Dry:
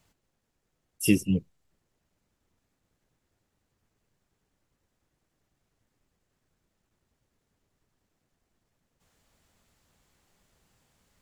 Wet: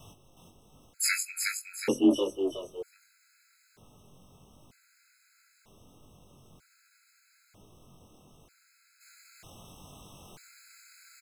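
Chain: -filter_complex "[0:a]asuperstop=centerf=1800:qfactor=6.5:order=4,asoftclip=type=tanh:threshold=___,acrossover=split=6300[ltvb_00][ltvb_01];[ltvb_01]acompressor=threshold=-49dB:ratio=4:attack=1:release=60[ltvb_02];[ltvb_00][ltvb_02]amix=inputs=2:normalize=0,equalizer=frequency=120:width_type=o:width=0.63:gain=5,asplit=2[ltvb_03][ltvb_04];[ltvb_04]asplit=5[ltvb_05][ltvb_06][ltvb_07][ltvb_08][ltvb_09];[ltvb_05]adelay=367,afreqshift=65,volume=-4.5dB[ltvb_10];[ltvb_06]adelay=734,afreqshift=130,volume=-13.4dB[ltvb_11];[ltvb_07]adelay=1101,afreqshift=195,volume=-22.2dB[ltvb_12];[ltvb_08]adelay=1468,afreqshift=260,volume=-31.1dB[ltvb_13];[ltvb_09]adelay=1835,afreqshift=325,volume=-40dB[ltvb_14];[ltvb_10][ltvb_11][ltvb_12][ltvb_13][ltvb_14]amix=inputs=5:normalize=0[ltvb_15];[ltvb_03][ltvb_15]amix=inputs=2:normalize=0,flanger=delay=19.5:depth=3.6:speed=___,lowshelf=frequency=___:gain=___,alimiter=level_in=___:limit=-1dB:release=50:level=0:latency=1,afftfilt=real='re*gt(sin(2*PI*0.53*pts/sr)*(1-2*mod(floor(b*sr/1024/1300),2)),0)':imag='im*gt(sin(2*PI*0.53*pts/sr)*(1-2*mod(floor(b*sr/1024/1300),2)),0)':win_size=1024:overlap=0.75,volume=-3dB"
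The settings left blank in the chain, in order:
-20.5dB, 1.3, 320, -3, 25dB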